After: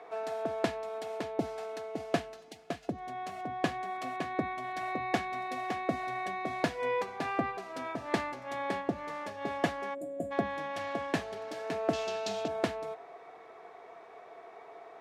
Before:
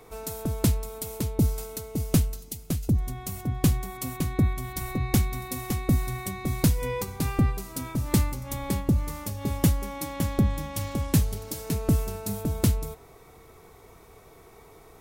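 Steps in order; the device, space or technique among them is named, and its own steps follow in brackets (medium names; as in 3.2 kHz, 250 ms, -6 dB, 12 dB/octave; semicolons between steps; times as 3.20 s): 9.94–10.31 s: time-frequency box 720–6900 Hz -28 dB; tin-can telephone (band-pass 470–2600 Hz; small resonant body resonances 690/1700 Hz, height 12 dB, ringing for 50 ms); 11.93–12.48 s: high-order bell 4.4 kHz +13 dB; trim +2 dB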